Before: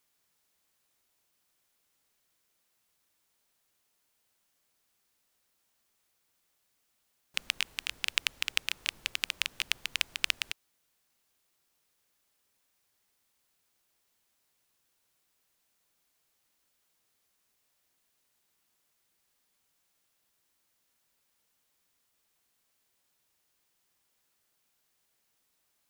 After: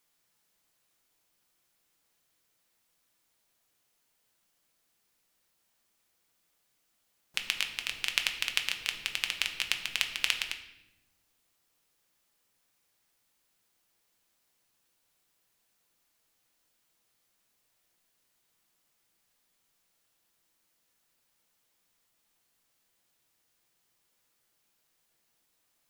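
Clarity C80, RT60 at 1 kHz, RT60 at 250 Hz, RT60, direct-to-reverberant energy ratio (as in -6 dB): 12.0 dB, 0.75 s, 1.6 s, 0.90 s, 4.5 dB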